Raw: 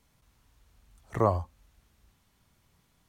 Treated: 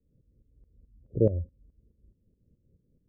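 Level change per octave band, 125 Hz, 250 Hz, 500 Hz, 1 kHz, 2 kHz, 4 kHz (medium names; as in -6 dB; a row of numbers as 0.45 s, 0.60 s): +2.5 dB, +4.0 dB, +1.5 dB, under -30 dB, under -25 dB, no reading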